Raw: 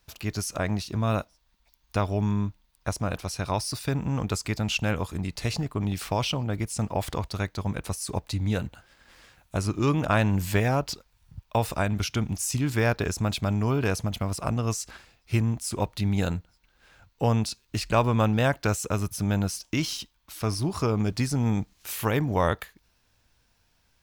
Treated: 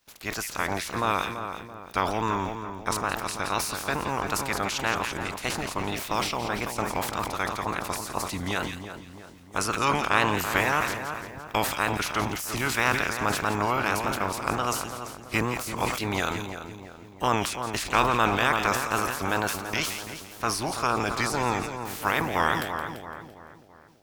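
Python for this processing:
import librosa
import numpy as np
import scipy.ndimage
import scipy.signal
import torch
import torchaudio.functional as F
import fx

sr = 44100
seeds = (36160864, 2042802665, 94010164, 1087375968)

p1 = fx.spec_clip(x, sr, under_db=20)
p2 = fx.wow_flutter(p1, sr, seeds[0], rate_hz=2.1, depth_cents=120.0)
p3 = p2 + fx.echo_split(p2, sr, split_hz=1800.0, low_ms=334, high_ms=170, feedback_pct=52, wet_db=-8.0, dry=0)
p4 = fx.dynamic_eq(p3, sr, hz=1200.0, q=1.0, threshold_db=-39.0, ratio=4.0, max_db=7)
p5 = fx.sustainer(p4, sr, db_per_s=57.0)
y = p5 * librosa.db_to_amplitude(-5.0)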